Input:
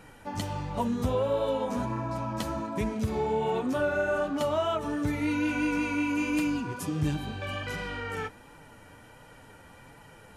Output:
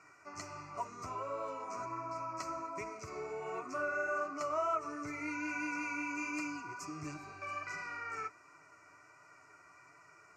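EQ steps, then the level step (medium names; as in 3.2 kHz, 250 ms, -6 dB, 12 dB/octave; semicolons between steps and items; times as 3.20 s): band-pass 340–6700 Hz; static phaser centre 850 Hz, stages 6; static phaser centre 2.5 kHz, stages 8; +2.5 dB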